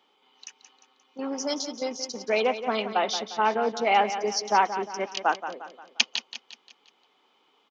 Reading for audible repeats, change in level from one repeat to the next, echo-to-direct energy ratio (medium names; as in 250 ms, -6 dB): 4, -7.0 dB, -10.0 dB